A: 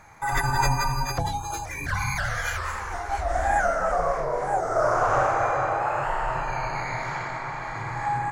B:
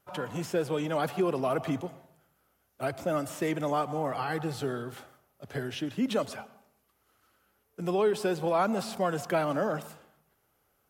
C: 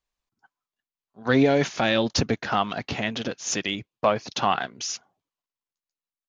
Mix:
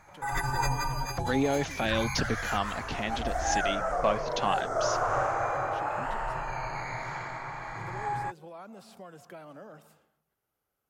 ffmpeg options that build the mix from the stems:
-filter_complex "[0:a]volume=-6dB[a];[1:a]acompressor=threshold=-37dB:ratio=2,volume=-11.5dB[b];[2:a]dynaudnorm=f=190:g=13:m=11.5dB,volume=-12.5dB[c];[a][b][c]amix=inputs=3:normalize=0"

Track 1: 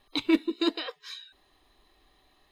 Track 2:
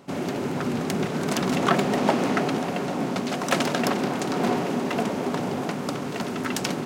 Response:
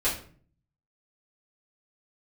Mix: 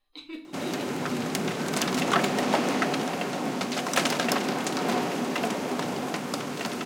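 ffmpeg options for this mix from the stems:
-filter_complex "[0:a]volume=-20dB,asplit=2[a][b];[b]volume=-6.5dB[c];[1:a]highpass=f=140:p=1,adelay=450,volume=-0.5dB,asplit=2[d][e];[e]volume=-23dB[f];[2:a]atrim=start_sample=2205[g];[c][f]amix=inputs=2:normalize=0[h];[h][g]afir=irnorm=-1:irlink=0[i];[a][d][i]amix=inputs=3:normalize=0,tiltshelf=f=1.5k:g=-3,asoftclip=type=tanh:threshold=-9.5dB"

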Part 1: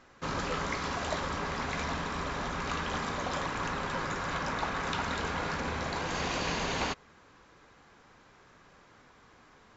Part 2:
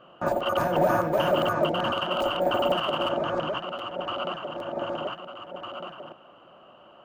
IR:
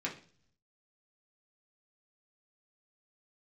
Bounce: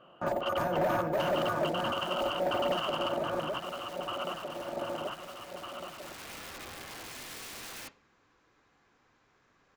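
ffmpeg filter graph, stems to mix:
-filter_complex "[0:a]aeval=exprs='(mod(28.2*val(0)+1,2)-1)/28.2':c=same,adelay=950,volume=-11.5dB,afade=t=in:st=5.91:d=0.39:silence=0.421697,asplit=2[a][b];[b]volume=-10.5dB[c];[1:a]volume=-5dB[d];[2:a]atrim=start_sample=2205[e];[c][e]afir=irnorm=-1:irlink=0[f];[a][d][f]amix=inputs=3:normalize=0,volume=24dB,asoftclip=hard,volume=-24dB"

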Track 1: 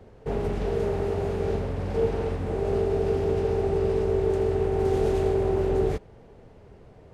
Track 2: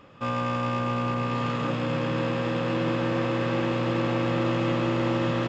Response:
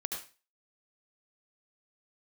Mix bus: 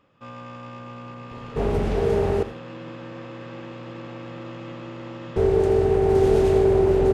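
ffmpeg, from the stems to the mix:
-filter_complex "[0:a]adelay=1300,volume=2dB,asplit=3[a][b][c];[a]atrim=end=2.43,asetpts=PTS-STARTPTS,afade=t=out:st=2.426:d=0.004:c=hsin[d];[b]atrim=start=2.43:end=5.36,asetpts=PTS-STARTPTS,volume=0[e];[c]atrim=start=5.36,asetpts=PTS-STARTPTS,afade=t=in:d=0.004:c=hsin[f];[d][e][f]concat=n=3:v=0:a=1,asplit=2[g][h];[h]volume=-8dB[i];[1:a]volume=-11.5dB[j];[2:a]atrim=start_sample=2205[k];[i][k]afir=irnorm=-1:irlink=0[l];[g][j][l]amix=inputs=3:normalize=0"

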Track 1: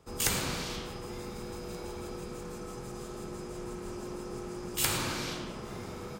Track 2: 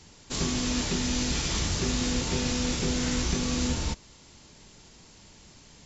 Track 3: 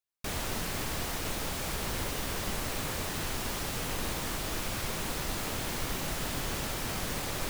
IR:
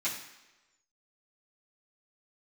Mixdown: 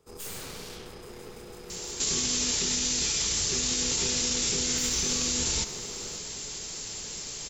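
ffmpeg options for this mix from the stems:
-filter_complex "[0:a]highshelf=f=4.1k:g=7.5,aeval=exprs='(tanh(50.1*val(0)+0.7)-tanh(0.7))/50.1':c=same,volume=-3.5dB[a];[1:a]crystalizer=i=6.5:c=0,acompressor=threshold=-22dB:ratio=6,adelay=1700,volume=2.5dB,asplit=2[b][c];[c]volume=-18dB[d];[2:a]lowpass=f=4.4k:w=0.5412,lowpass=f=4.4k:w=1.3066,volume=-16.5dB[e];[3:a]atrim=start_sample=2205[f];[d][f]afir=irnorm=-1:irlink=0[g];[a][b][e][g]amix=inputs=4:normalize=0,equalizer=f=430:t=o:w=0.32:g=9,alimiter=limit=-18.5dB:level=0:latency=1:release=48"

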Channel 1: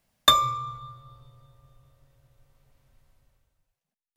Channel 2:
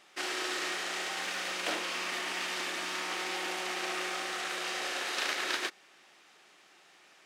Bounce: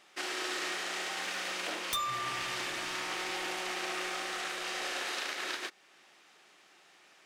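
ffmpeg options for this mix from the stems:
-filter_complex "[0:a]tiltshelf=f=910:g=-5,aeval=exprs='0.316*(abs(mod(val(0)/0.316+3,4)-2)-1)':c=same,adelay=1650,volume=-5dB[a];[1:a]volume=-1dB[b];[a][b]amix=inputs=2:normalize=0,alimiter=level_in=0.5dB:limit=-24dB:level=0:latency=1:release=326,volume=-0.5dB"

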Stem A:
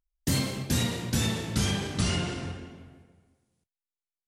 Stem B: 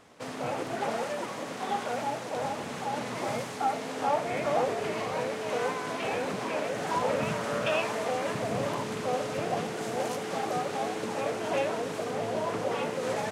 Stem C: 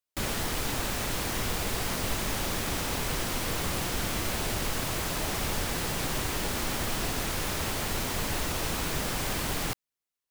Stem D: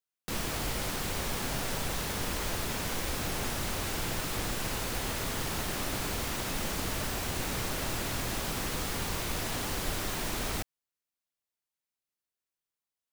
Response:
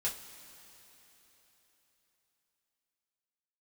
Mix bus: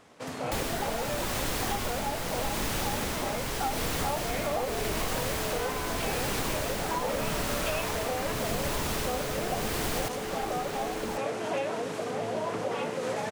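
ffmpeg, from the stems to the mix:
-filter_complex "[0:a]acompressor=threshold=-31dB:ratio=6,volume=-12.5dB[a];[1:a]volume=0dB[b];[2:a]tremolo=f=0.83:d=0.6,adelay=350,volume=2.5dB[c];[3:a]adelay=550,volume=-9dB[d];[a][b][c][d]amix=inputs=4:normalize=0,acompressor=threshold=-26dB:ratio=6"

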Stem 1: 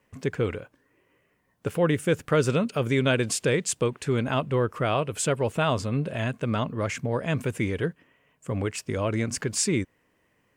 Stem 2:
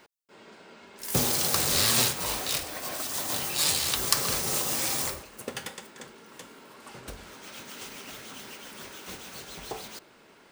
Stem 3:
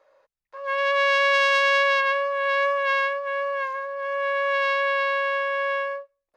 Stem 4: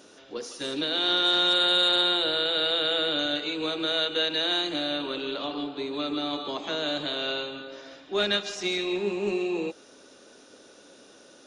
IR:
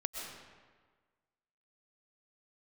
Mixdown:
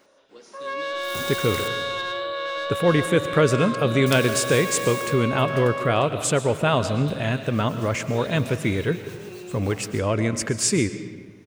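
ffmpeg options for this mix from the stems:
-filter_complex "[0:a]adelay=1050,volume=0.5dB,asplit=2[a][b];[b]volume=-6dB[c];[1:a]volume=-8dB,asplit=3[d][e][f];[d]atrim=end=1.68,asetpts=PTS-STARTPTS,afade=t=out:st=1.676:d=0.004:c=hsin[g];[e]atrim=start=1.68:end=4.06,asetpts=PTS-STARTPTS,volume=0[h];[f]atrim=start=4.06,asetpts=PTS-STARTPTS,afade=t=in:d=0.004:c=hsin[i];[g][h][i]concat=n=3:v=0:a=1,asplit=2[j][k];[k]volume=-13.5dB[l];[2:a]lowpass=3.6k,bandreject=f=414.9:t=h:w=4,bandreject=f=829.8:t=h:w=4,bandreject=f=1.2447k:t=h:w=4,bandreject=f=1.6596k:t=h:w=4,bandreject=f=2.0745k:t=h:w=4,bandreject=f=2.4894k:t=h:w=4,bandreject=f=2.9043k:t=h:w=4,bandreject=f=3.3192k:t=h:w=4,bandreject=f=3.7341k:t=h:w=4,bandreject=f=4.149k:t=h:w=4,bandreject=f=4.5639k:t=h:w=4,bandreject=f=4.9788k:t=h:w=4,bandreject=f=5.3937k:t=h:w=4,bandreject=f=5.8086k:t=h:w=4,bandreject=f=6.2235k:t=h:w=4,bandreject=f=6.6384k:t=h:w=4,bandreject=f=7.0533k:t=h:w=4,bandreject=f=7.4682k:t=h:w=4,bandreject=f=7.8831k:t=h:w=4,bandreject=f=8.298k:t=h:w=4,bandreject=f=8.7129k:t=h:w=4,bandreject=f=9.1278k:t=h:w=4,bandreject=f=9.5427k:t=h:w=4,bandreject=f=9.9576k:t=h:w=4,bandreject=f=10.3725k:t=h:w=4,bandreject=f=10.7874k:t=h:w=4,bandreject=f=11.2023k:t=h:w=4,bandreject=f=11.6172k:t=h:w=4,bandreject=f=12.0321k:t=h:w=4,bandreject=f=12.447k:t=h:w=4,bandreject=f=12.8619k:t=h:w=4,bandreject=f=13.2768k:t=h:w=4,bandreject=f=13.6917k:t=h:w=4,bandreject=f=14.1066k:t=h:w=4,bandreject=f=14.5215k:t=h:w=4,bandreject=f=14.9364k:t=h:w=4,asoftclip=type=tanh:threshold=-18.5dB,volume=0dB[m];[3:a]volume=-15.5dB,asplit=2[n][o];[o]volume=-5.5dB[p];[j][m]amix=inputs=2:normalize=0,acompressor=threshold=-26dB:ratio=6,volume=0dB[q];[4:a]atrim=start_sample=2205[r];[c][l][p]amix=inputs=3:normalize=0[s];[s][r]afir=irnorm=-1:irlink=0[t];[a][n][q][t]amix=inputs=4:normalize=0"

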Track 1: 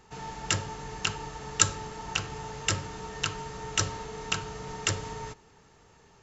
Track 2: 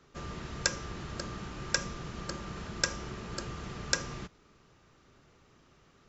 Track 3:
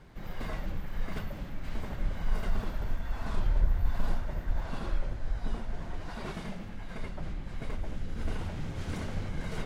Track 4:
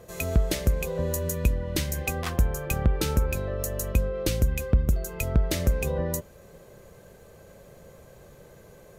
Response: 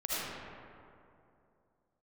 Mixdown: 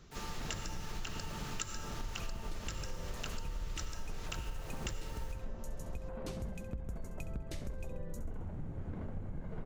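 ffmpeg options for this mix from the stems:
-filter_complex "[0:a]acrusher=bits=6:mix=0:aa=0.000001,volume=-11dB,asplit=2[a][b];[b]volume=-10dB[c];[1:a]highshelf=f=2k:g=11.5,alimiter=limit=-18.5dB:level=0:latency=1:release=286,volume=-6dB[d];[2:a]asoftclip=type=tanh:threshold=-17dB,adynamicsmooth=sensitivity=1.5:basefreq=860,volume=-4dB[e];[3:a]lowpass=9.7k,adelay=2000,volume=-17.5dB,asplit=2[f][g];[g]volume=-12.5dB[h];[4:a]atrim=start_sample=2205[i];[c][i]afir=irnorm=-1:irlink=0[j];[h]aecho=0:1:67|134|201|268|335|402|469|536:1|0.53|0.281|0.149|0.0789|0.0418|0.0222|0.0117[k];[a][d][e][f][j][k]amix=inputs=6:normalize=0,acompressor=threshold=-35dB:ratio=10"

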